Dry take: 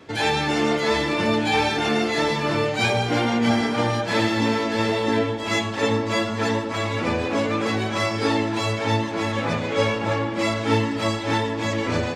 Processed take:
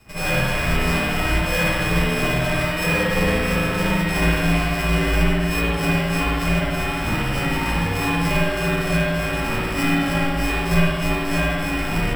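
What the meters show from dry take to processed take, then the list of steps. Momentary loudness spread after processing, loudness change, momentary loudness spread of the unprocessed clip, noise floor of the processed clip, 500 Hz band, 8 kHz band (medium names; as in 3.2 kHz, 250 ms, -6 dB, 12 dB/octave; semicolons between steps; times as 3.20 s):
3 LU, +1.5 dB, 3 LU, -24 dBFS, -2.0 dB, +3.0 dB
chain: sorted samples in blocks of 16 samples; spring tank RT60 1.6 s, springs 53 ms, chirp 25 ms, DRR -9.5 dB; frequency shift -280 Hz; trim -5.5 dB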